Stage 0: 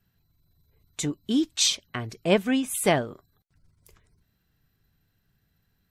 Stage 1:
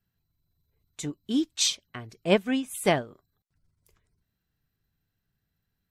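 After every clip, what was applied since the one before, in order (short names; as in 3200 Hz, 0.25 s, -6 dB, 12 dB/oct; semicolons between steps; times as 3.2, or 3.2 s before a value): upward expander 1.5:1, over -34 dBFS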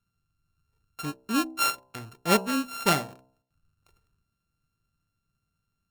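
sample sorter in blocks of 32 samples; de-hum 64.16 Hz, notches 16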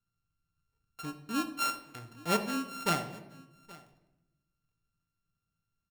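echo 0.824 s -22 dB; shoebox room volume 420 m³, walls mixed, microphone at 0.47 m; gain -7.5 dB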